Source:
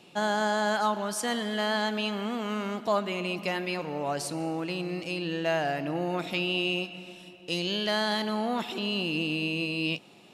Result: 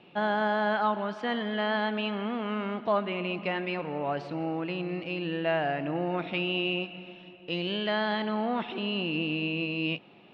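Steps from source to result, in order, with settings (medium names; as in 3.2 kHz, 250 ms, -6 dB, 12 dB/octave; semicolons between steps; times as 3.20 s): low-pass 3.1 kHz 24 dB/octave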